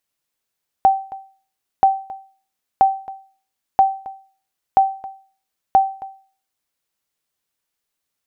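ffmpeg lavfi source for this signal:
ffmpeg -f lavfi -i "aevalsrc='0.562*(sin(2*PI*775*mod(t,0.98))*exp(-6.91*mod(t,0.98)/0.42)+0.106*sin(2*PI*775*max(mod(t,0.98)-0.27,0))*exp(-6.91*max(mod(t,0.98)-0.27,0)/0.42))':duration=5.88:sample_rate=44100" out.wav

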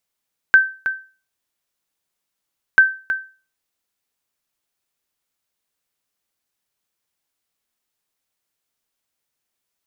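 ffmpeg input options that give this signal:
ffmpeg -f lavfi -i "aevalsrc='0.708*(sin(2*PI*1550*mod(t,2.24))*exp(-6.91*mod(t,2.24)/0.35)+0.282*sin(2*PI*1550*max(mod(t,2.24)-0.32,0))*exp(-6.91*max(mod(t,2.24)-0.32,0)/0.35))':duration=4.48:sample_rate=44100" out.wav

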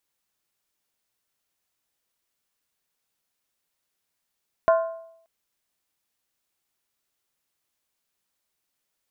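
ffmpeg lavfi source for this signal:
ffmpeg -f lavfi -i "aevalsrc='0.224*pow(10,-3*t/0.72)*sin(2*PI*659*t)+0.1*pow(10,-3*t/0.57)*sin(2*PI*1050.4*t)+0.0447*pow(10,-3*t/0.493)*sin(2*PI*1407.6*t)+0.02*pow(10,-3*t/0.475)*sin(2*PI*1513.1*t)+0.00891*pow(10,-3*t/0.442)*sin(2*PI*1748.3*t)':duration=0.58:sample_rate=44100" out.wav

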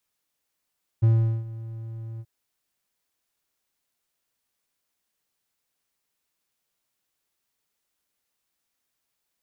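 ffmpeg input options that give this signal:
ffmpeg -f lavfi -i "aevalsrc='0.251*(1-4*abs(mod(113*t+0.25,1)-0.5))':duration=1.231:sample_rate=44100,afade=type=in:duration=0.017,afade=type=out:start_time=0.017:duration=0.402:silence=0.112,afade=type=out:start_time=1.18:duration=0.051" out.wav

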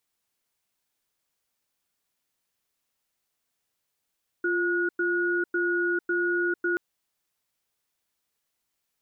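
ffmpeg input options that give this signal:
ffmpeg -f lavfi -i "aevalsrc='0.0531*(sin(2*PI*349*t)+sin(2*PI*1450*t))*clip(min(mod(t,0.55),0.45-mod(t,0.55))/0.005,0,1)':duration=2.33:sample_rate=44100" out.wav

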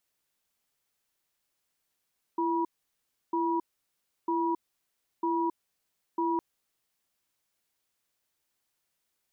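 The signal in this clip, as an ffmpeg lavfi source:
ffmpeg -f lavfi -i "aevalsrc='0.0398*(sin(2*PI*336*t)+sin(2*PI*967*t))*clip(min(mod(t,0.95),0.27-mod(t,0.95))/0.005,0,1)':duration=4.01:sample_rate=44100" out.wav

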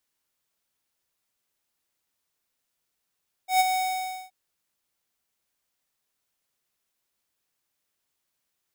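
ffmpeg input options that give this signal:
ffmpeg -f lavfi -i "aevalsrc='0.126*(2*lt(mod(747*t,1),0.5)-1)':duration=0.824:sample_rate=44100,afade=type=in:duration=0.121,afade=type=out:start_time=0.121:duration=0.027:silence=0.447,afade=type=out:start_time=0.25:duration=0.574" out.wav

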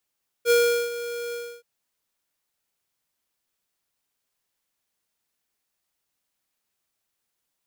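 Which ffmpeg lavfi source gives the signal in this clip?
ffmpeg -f lavfi -i "aevalsrc='0.141*(2*lt(mod(475*t,1),0.5)-1)':duration=1.175:sample_rate=44100,afade=type=in:duration=0.055,afade=type=out:start_time=0.055:duration=0.391:silence=0.188,afade=type=out:start_time=0.88:duration=0.295" out.wav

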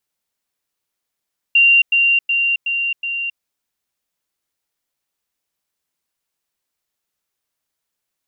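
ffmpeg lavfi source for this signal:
ffmpeg -f lavfi -i "aevalsrc='pow(10,(-8-3*floor(t/0.37))/20)*sin(2*PI*2770*t)*clip(min(mod(t,0.37),0.27-mod(t,0.37))/0.005,0,1)':duration=1.85:sample_rate=44100" out.wav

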